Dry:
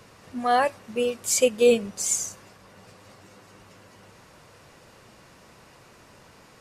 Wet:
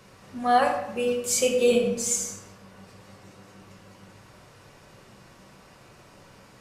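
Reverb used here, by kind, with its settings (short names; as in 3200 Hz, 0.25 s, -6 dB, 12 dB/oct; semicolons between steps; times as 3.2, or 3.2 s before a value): shoebox room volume 360 m³, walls mixed, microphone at 1.1 m; gain -3 dB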